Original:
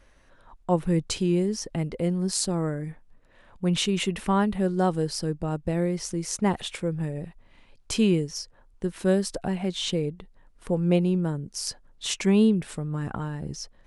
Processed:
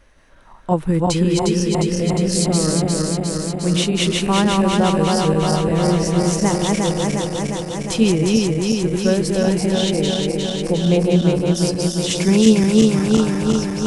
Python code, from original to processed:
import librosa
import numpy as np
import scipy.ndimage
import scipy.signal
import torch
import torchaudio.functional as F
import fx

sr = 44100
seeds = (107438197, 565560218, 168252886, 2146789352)

y = fx.reverse_delay_fb(x, sr, ms=178, feedback_pct=85, wet_db=-2.0)
y = F.gain(torch.from_numpy(y), 4.5).numpy()